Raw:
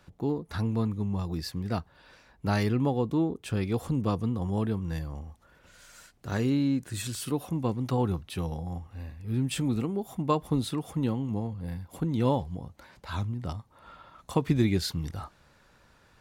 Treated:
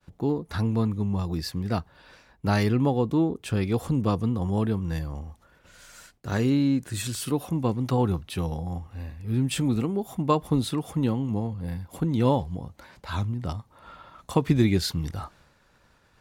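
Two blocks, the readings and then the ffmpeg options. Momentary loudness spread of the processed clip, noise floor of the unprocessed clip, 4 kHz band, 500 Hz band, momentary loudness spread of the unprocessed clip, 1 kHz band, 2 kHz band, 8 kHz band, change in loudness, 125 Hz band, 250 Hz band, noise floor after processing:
13 LU, −62 dBFS, +3.5 dB, +3.5 dB, 13 LU, +3.5 dB, +3.5 dB, +3.5 dB, +3.5 dB, +3.5 dB, +3.5 dB, −62 dBFS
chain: -af "agate=range=-33dB:threshold=-55dB:ratio=3:detection=peak,volume=3.5dB"

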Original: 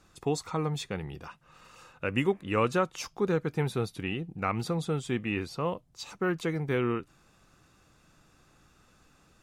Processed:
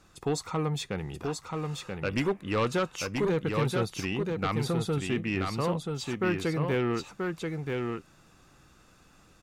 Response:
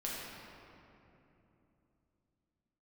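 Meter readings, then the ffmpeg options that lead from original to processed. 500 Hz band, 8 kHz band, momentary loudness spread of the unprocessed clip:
+1.0 dB, +3.5 dB, 9 LU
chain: -af "aeval=exprs='0.237*sin(PI/2*2.24*val(0)/0.237)':channel_layout=same,aecho=1:1:982:0.631,volume=-9dB"

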